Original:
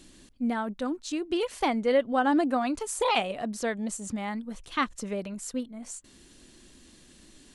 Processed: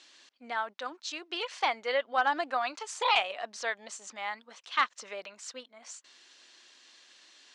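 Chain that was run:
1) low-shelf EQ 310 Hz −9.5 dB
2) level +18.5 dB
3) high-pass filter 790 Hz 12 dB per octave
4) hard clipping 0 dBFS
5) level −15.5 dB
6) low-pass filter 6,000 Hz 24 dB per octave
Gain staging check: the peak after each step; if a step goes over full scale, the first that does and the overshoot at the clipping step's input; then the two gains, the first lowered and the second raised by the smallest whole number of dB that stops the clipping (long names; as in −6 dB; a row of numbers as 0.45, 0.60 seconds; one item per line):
−12.5, +6.0, +6.0, 0.0, −15.5, −14.0 dBFS
step 2, 6.0 dB
step 2 +12.5 dB, step 5 −9.5 dB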